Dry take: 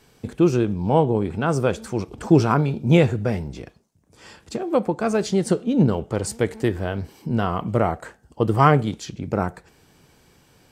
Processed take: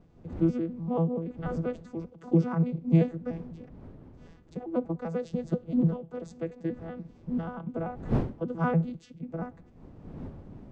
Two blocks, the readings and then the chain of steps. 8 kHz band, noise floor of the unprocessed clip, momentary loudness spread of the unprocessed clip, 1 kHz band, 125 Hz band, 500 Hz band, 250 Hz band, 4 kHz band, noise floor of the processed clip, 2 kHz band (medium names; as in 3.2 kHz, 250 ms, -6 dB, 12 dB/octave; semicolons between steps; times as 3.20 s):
under -25 dB, -58 dBFS, 12 LU, -15.0 dB, -7.5 dB, -11.5 dB, -7.0 dB, under -20 dB, -55 dBFS, -14.5 dB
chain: vocoder on a broken chord bare fifth, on E3, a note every 97 ms; wind noise 230 Hz -34 dBFS; trim -8 dB